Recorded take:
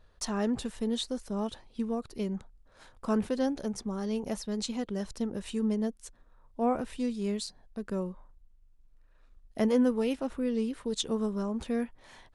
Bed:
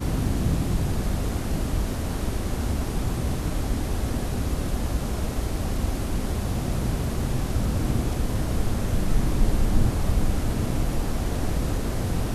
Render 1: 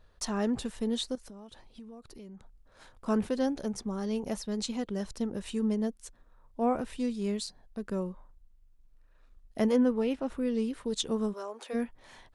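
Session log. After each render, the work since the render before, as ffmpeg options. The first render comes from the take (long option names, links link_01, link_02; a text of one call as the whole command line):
ffmpeg -i in.wav -filter_complex "[0:a]asettb=1/sr,asplit=3[link_01][link_02][link_03];[link_01]atrim=end=1.154[link_04];[link_02]atrim=start=1.15:end=3.06,asetpts=PTS-STARTPTS,afade=type=in:duration=0.004:curve=qsin,afade=type=out:start_time=1.906:duration=0.004:curve=qsin,acompressor=threshold=-45dB:ratio=6:attack=3.2:release=140:knee=1:detection=peak[link_05];[link_03]atrim=start=3.056[link_06];[link_04][link_05]acrossfade=duration=0.004:curve1=hsin:curve2=qsin[link_07];[link_07][link_06]acrossfade=duration=0.004:curve1=qsin:curve2=hsin,asettb=1/sr,asplit=3[link_08][link_09][link_10];[link_08]atrim=end=9.764[link_11];[link_09]atrim=start=9.76:end=10.27,asetpts=PTS-STARTPTS,afade=type=in:duration=0.004:curve=qsin,afade=type=out:start_time=0.506:duration=0.004:curve=qsin,highshelf=frequency=5500:gain=-12[link_12];[link_10]atrim=start=10.266[link_13];[link_11][link_12]acrossfade=duration=0.004:curve1=hsin:curve2=qsin[link_14];[link_14][link_13]acrossfade=duration=0.004:curve1=qsin:curve2=hsin,asplit=3[link_15][link_16][link_17];[link_15]afade=type=out:start_time=11.32:duration=0.02[link_18];[link_16]highpass=frequency=430:width=0.5412,highpass=frequency=430:width=1.3066,afade=type=in:start_time=11.32:duration=0.02,afade=type=out:start_time=11.73:duration=0.02[link_19];[link_17]afade=type=in:start_time=11.73:duration=0.02[link_20];[link_18][link_19][link_20]amix=inputs=3:normalize=0" out.wav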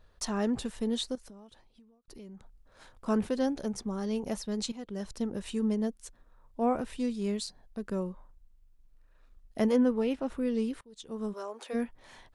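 ffmpeg -i in.wav -filter_complex "[0:a]asplit=4[link_01][link_02][link_03][link_04];[link_01]atrim=end=2.08,asetpts=PTS-STARTPTS,afade=type=out:start_time=1.08:duration=1[link_05];[link_02]atrim=start=2.08:end=4.72,asetpts=PTS-STARTPTS,afade=type=in:duration=0.004:curve=hsin,afade=type=out:start_time=2.636:duration=0.004:curve=hsin:silence=0.223872[link_06];[link_03]atrim=start=4.72:end=10.81,asetpts=PTS-STARTPTS,afade=type=in:duration=0.62:curve=qsin:silence=0.223872,afade=type=out:start_time=6.086:duration=0.004:curve=hsin:silence=0.0630957[link_07];[link_04]atrim=start=10.81,asetpts=PTS-STARTPTS,afade=type=in:duration=0.56:curve=qua:silence=0.0630957[link_08];[link_05][link_06][link_07][link_08]concat=n=4:v=0:a=1" out.wav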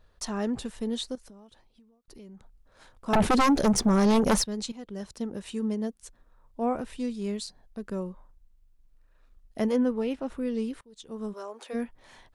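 ffmpeg -i in.wav -filter_complex "[0:a]asettb=1/sr,asplit=3[link_01][link_02][link_03];[link_01]atrim=end=3.134[link_04];[link_02]atrim=start=3.13:end=4.44,asetpts=PTS-STARTPTS,afade=type=in:duration=0.004:curve=qsin,afade=type=out:start_time=1.306:duration=0.004:curve=qsin,aeval=exprs='0.141*sin(PI/2*3.98*val(0)/0.141)':channel_layout=same[link_05];[link_03]atrim=start=4.436[link_06];[link_04][link_05]acrossfade=duration=0.004:curve1=hsin:curve2=qsin[link_07];[link_07][link_06]acrossfade=duration=0.004:curve1=qsin:curve2=hsin,asettb=1/sr,asplit=3[link_08][link_09][link_10];[link_08]atrim=end=5.034[link_11];[link_09]atrim=start=5.03:end=6.03,asetpts=PTS-STARTPTS,afade=type=in:duration=0.004:curve=qsin,afade=type=out:start_time=0.996:duration=0.004:curve=qsin,highpass=frequency=72:poles=1[link_12];[link_10]atrim=start=6.026[link_13];[link_11][link_12]acrossfade=duration=0.004:curve1=hsin:curve2=qsin[link_14];[link_14][link_13]acrossfade=duration=0.004:curve1=qsin:curve2=hsin" out.wav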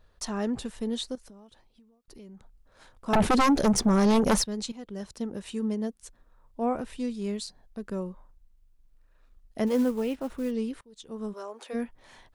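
ffmpeg -i in.wav -filter_complex "[0:a]asplit=3[link_01][link_02][link_03];[link_01]afade=type=out:start_time=9.66:duration=0.02[link_04];[link_02]acrusher=bits=6:mode=log:mix=0:aa=0.000001,afade=type=in:start_time=9.66:duration=0.02,afade=type=out:start_time=10.5:duration=0.02[link_05];[link_03]afade=type=in:start_time=10.5:duration=0.02[link_06];[link_04][link_05][link_06]amix=inputs=3:normalize=0" out.wav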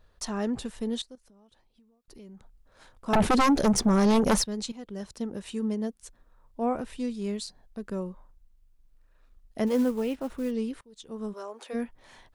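ffmpeg -i in.wav -filter_complex "[0:a]asplit=2[link_01][link_02];[link_01]atrim=end=1.02,asetpts=PTS-STARTPTS,afade=type=out:start_time=1.016:duration=0.004:curve=hsin:silence=0.16788[link_03];[link_02]atrim=start=1.02,asetpts=PTS-STARTPTS,afade=type=in:duration=1.24:silence=0.16788[link_04];[link_03][link_04]concat=n=2:v=0:a=1" out.wav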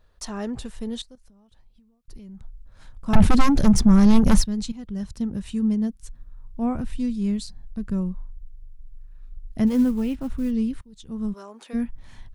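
ffmpeg -i in.wav -af "asubboost=boost=10:cutoff=150" out.wav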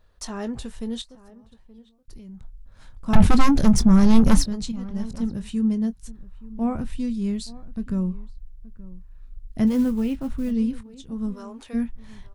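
ffmpeg -i in.wav -filter_complex "[0:a]asplit=2[link_01][link_02];[link_02]adelay=22,volume=-13dB[link_03];[link_01][link_03]amix=inputs=2:normalize=0,asplit=2[link_04][link_05];[link_05]adelay=874.6,volume=-19dB,highshelf=frequency=4000:gain=-19.7[link_06];[link_04][link_06]amix=inputs=2:normalize=0" out.wav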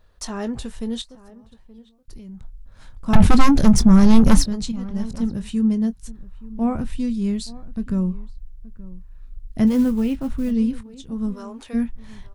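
ffmpeg -i in.wav -af "volume=3dB,alimiter=limit=-1dB:level=0:latency=1" out.wav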